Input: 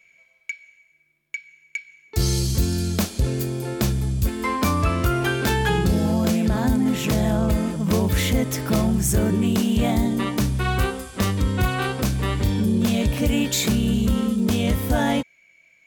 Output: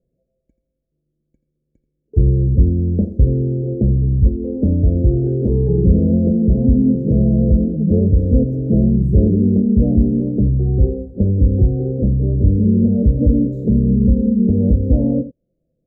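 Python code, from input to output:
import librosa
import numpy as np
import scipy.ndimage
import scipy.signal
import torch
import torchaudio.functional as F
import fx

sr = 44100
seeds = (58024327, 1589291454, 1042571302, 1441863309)

y = scipy.signal.sosfilt(scipy.signal.ellip(4, 1.0, 50, 530.0, 'lowpass', fs=sr, output='sos'), x)
y = fx.low_shelf(y, sr, hz=89.0, db=8.0)
y = y + 10.0 ** (-14.0 / 20.0) * np.pad(y, (int(84 * sr / 1000.0), 0))[:len(y)]
y = F.gain(torch.from_numpy(y), 5.0).numpy()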